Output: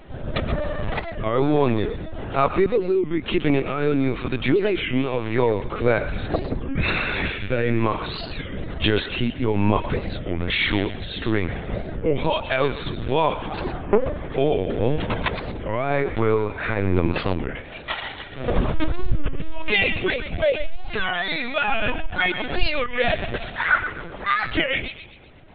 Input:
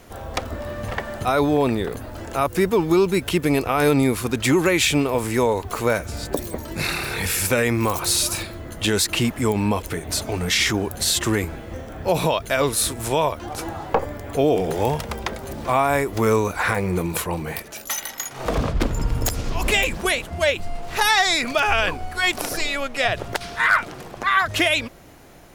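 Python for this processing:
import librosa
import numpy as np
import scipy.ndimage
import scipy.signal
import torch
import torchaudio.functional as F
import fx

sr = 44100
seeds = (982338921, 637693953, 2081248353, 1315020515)

p1 = fx.low_shelf(x, sr, hz=74.0, db=7.0)
p2 = fx.rider(p1, sr, range_db=3, speed_s=0.5)
p3 = fx.rotary_switch(p2, sr, hz=1.1, then_hz=6.7, switch_at_s=21.5)
p4 = p3 + fx.echo_thinned(p3, sr, ms=127, feedback_pct=43, hz=910.0, wet_db=-9, dry=0)
p5 = fx.lpc_vocoder(p4, sr, seeds[0], excitation='pitch_kept', order=16)
p6 = fx.record_warp(p5, sr, rpm=33.33, depth_cents=250.0)
y = F.gain(torch.from_numpy(p6), 1.5).numpy()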